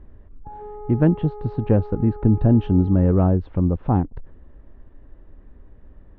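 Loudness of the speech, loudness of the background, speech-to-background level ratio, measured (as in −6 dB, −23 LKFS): −20.0 LKFS, −38.5 LKFS, 18.5 dB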